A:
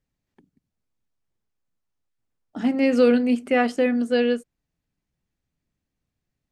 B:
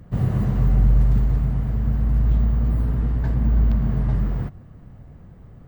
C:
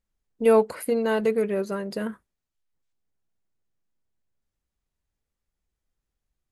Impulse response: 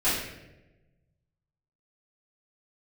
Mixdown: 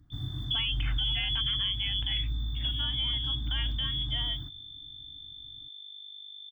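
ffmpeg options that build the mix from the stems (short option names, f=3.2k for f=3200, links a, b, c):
-filter_complex "[0:a]volume=-10.5dB[a];[1:a]firequalizer=gain_entry='entry(120,0);entry(200,-15);entry(290,7);entry(450,-24);entry(720,-9);entry(1500,-2);entry(2700,-12);entry(4500,3);entry(7900,0)':delay=0.05:min_phase=1,volume=-14dB[b];[2:a]aeval=exprs='val(0)+0.00251*(sin(2*PI*50*n/s)+sin(2*PI*2*50*n/s)/2+sin(2*PI*3*50*n/s)/3+sin(2*PI*4*50*n/s)/4+sin(2*PI*5*50*n/s)/5)':c=same,bandreject=f=450:w=12,acontrast=82,adelay=100,volume=0dB[c];[a][c]amix=inputs=2:normalize=0,lowpass=f=3.1k:t=q:w=0.5098,lowpass=f=3.1k:t=q:w=0.6013,lowpass=f=3.1k:t=q:w=0.9,lowpass=f=3.1k:t=q:w=2.563,afreqshift=-3600,acompressor=threshold=-31dB:ratio=2,volume=0dB[d];[b][d]amix=inputs=2:normalize=0,alimiter=limit=-21dB:level=0:latency=1:release=46"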